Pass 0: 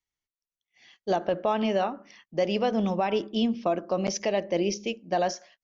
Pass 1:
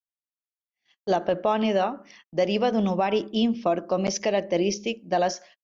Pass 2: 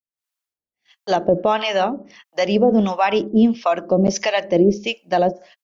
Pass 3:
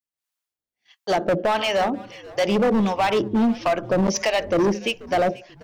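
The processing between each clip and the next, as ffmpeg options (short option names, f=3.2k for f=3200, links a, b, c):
-af "agate=range=-27dB:threshold=-52dB:ratio=16:detection=peak,volume=2.5dB"
-filter_complex "[0:a]acrossover=split=670[a][b];[a]aeval=exprs='val(0)*(1-1/2+1/2*cos(2*PI*1.5*n/s))':c=same[c];[b]aeval=exprs='val(0)*(1-1/2-1/2*cos(2*PI*1.5*n/s))':c=same[d];[c][d]amix=inputs=2:normalize=0,dynaudnorm=f=110:g=3:m=11.5dB"
-filter_complex "[0:a]asoftclip=type=hard:threshold=-16dB,asplit=3[a][b][c];[b]adelay=486,afreqshift=-97,volume=-20dB[d];[c]adelay=972,afreqshift=-194,volume=-30.2dB[e];[a][d][e]amix=inputs=3:normalize=0"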